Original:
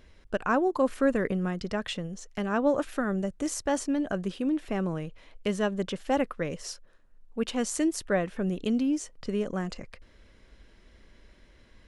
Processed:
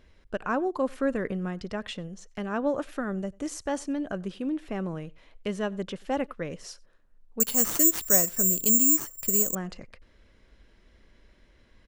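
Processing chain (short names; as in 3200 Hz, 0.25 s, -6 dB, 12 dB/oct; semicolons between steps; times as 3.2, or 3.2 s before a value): high shelf 7300 Hz -4.5 dB; outdoor echo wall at 16 m, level -26 dB; 7.4–9.55 careless resampling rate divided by 6×, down none, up zero stuff; gain -2.5 dB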